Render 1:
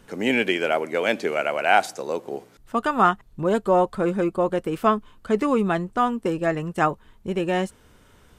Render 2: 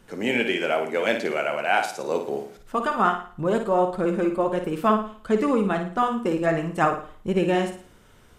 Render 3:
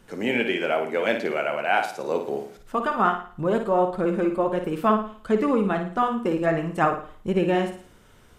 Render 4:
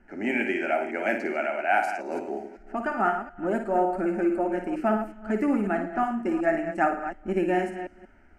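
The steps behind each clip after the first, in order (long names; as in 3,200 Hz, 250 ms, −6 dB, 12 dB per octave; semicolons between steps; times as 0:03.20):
speech leveller within 4 dB 0.5 s; flanger 1.5 Hz, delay 5 ms, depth 4.9 ms, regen −58%; on a send: flutter between parallel walls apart 9.5 metres, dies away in 0.45 s; on the sum: level +2.5 dB
dynamic equaliser 7,500 Hz, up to −7 dB, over −48 dBFS, Q 0.72
delay that plays each chunk backwards 183 ms, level −10 dB; low-pass that shuts in the quiet parts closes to 2,400 Hz, open at −16.5 dBFS; phaser with its sweep stopped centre 720 Hz, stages 8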